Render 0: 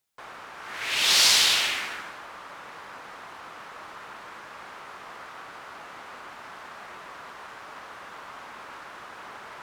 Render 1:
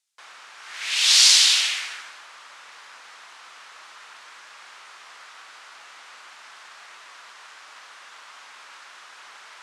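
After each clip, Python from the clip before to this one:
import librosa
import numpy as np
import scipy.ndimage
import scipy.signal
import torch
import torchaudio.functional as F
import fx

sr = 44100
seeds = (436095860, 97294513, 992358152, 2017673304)

y = fx.weighting(x, sr, curve='ITU-R 468')
y = y * librosa.db_to_amplitude(-6.0)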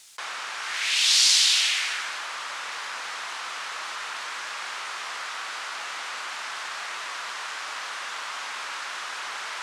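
y = fx.env_flatten(x, sr, amount_pct=50)
y = y * librosa.db_to_amplitude(-5.0)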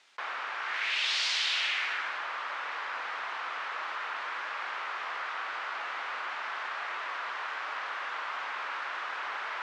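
y = fx.bandpass_edges(x, sr, low_hz=280.0, high_hz=2200.0)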